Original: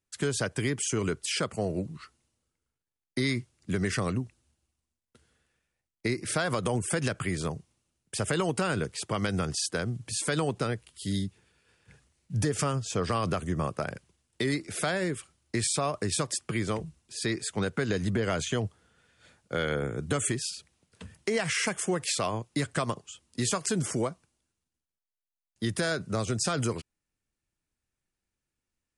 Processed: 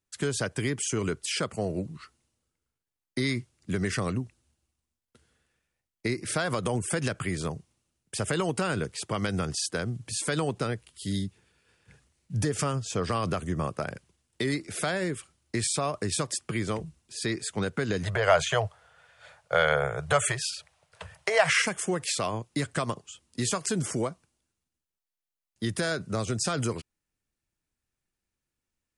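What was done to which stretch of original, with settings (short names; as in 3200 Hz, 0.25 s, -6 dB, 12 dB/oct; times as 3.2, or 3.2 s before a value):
18.03–21.62 EQ curve 160 Hz 0 dB, 230 Hz -24 dB, 620 Hz +13 dB, 7400 Hz +1 dB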